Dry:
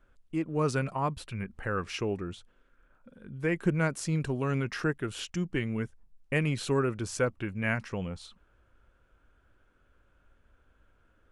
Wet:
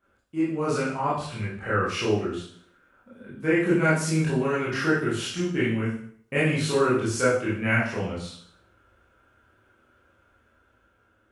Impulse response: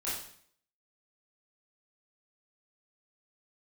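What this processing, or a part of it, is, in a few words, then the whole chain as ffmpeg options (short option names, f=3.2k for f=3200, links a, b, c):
far laptop microphone: -filter_complex "[1:a]atrim=start_sample=2205[a];[0:a][a]afir=irnorm=-1:irlink=0,highpass=100,dynaudnorm=f=340:g=7:m=3.5dB,asettb=1/sr,asplit=3[b][c][d];[b]atrim=end=0.824[e];[c]atrim=start=0.82:end=1.84,asetpts=PTS-STARTPTS,afade=t=in:d=0.004:c=qsin,afade=t=out:st=1.016:d=0.004:c=qsin,lowpass=f=9.4k:w=0.5412,lowpass=f=9.4k:w=1.3066[f];[d]atrim=start=1.836[g];[e][f]acrossfade=d=0.004:c1=hsin:c2=qsin[h];[h][g]acrossfade=d=0.004:c1=qsin:c2=hsin"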